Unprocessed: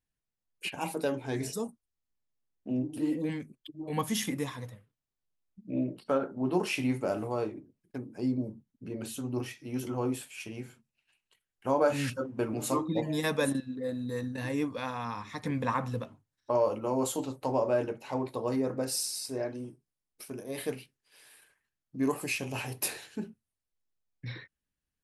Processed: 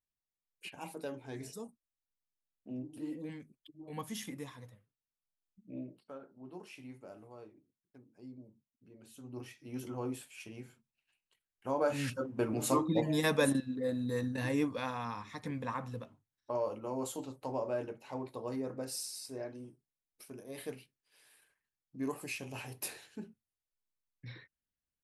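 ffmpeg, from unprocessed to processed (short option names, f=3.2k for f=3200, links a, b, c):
-af "volume=9.5dB,afade=t=out:st=5.67:d=0.44:silence=0.334965,afade=t=in:st=9.03:d=0.7:silence=0.223872,afade=t=in:st=11.69:d=1.03:silence=0.446684,afade=t=out:st=14.48:d=1.14:silence=0.398107"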